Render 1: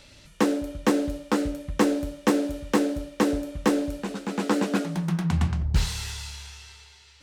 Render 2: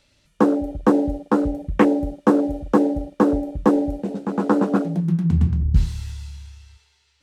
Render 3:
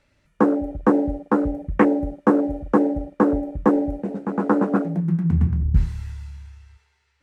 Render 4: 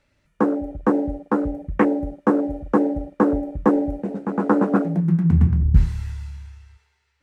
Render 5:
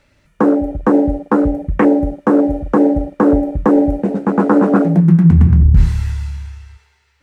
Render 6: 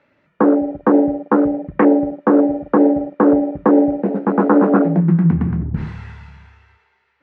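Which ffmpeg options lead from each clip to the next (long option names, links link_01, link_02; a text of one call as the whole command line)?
ffmpeg -i in.wav -af "afwtdn=0.0316,volume=6dB" out.wav
ffmpeg -i in.wav -af "highshelf=frequency=2600:width_type=q:width=1.5:gain=-8,volume=-1dB" out.wav
ffmpeg -i in.wav -af "dynaudnorm=framelen=260:gausssize=7:maxgain=11.5dB,volume=-2dB" out.wav
ffmpeg -i in.wav -af "alimiter=level_in=11dB:limit=-1dB:release=50:level=0:latency=1,volume=-1dB" out.wav
ffmpeg -i in.wav -af "highpass=200,lowpass=2100" out.wav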